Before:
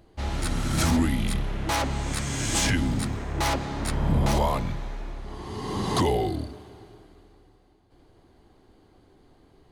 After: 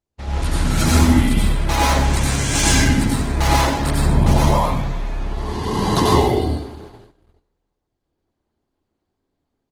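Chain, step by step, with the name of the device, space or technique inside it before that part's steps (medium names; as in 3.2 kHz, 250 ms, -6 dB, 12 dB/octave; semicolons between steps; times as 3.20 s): speakerphone in a meeting room (reverberation RT60 0.70 s, pre-delay 85 ms, DRR -4.5 dB; speakerphone echo 130 ms, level -30 dB; level rider gain up to 7 dB; gate -34 dBFS, range -29 dB; trim -1 dB; Opus 16 kbps 48 kHz)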